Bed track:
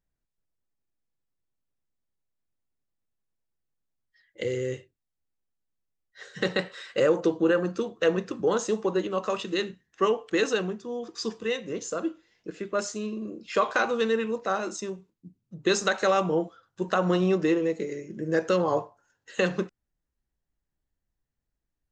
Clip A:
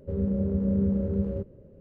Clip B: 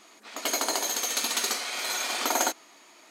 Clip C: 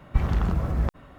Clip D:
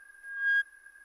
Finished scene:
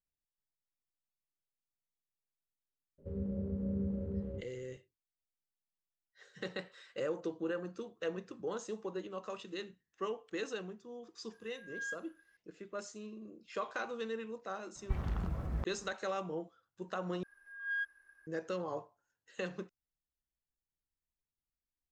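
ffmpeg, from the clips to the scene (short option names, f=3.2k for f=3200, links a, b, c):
-filter_complex "[4:a]asplit=2[a][b];[0:a]volume=-14.5dB[c];[b]highshelf=f=5.9k:g=-7.5[d];[c]asplit=2[e][f];[e]atrim=end=17.234[g];[d]atrim=end=1.04,asetpts=PTS-STARTPTS,volume=-9dB[h];[f]atrim=start=18.266[i];[1:a]atrim=end=1.8,asetpts=PTS-STARTPTS,volume=-11dB,afade=t=in:d=0.004:c=hsin,afade=t=out:st=1.796:d=0.004:c=hsin,adelay=2980[j];[a]atrim=end=1.04,asetpts=PTS-STARTPTS,volume=-14.5dB,afade=t=in:d=0.004:c=hsin,afade=t=out:st=1.036:d=0.004:c=hsin,adelay=11330[k];[3:a]atrim=end=1.18,asetpts=PTS-STARTPTS,volume=-12.5dB,afade=t=in:d=0.004:c=hsin,afade=t=out:st=1.176:d=0.004:c=hsin,adelay=14750[l];[g][h]acrossfade=d=0.004:c1=hsin:c2=hsin[m];[m][i]acrossfade=d=0.004:c1=hsin:c2=hsin[n];[n][j][k][l]amix=inputs=4:normalize=0"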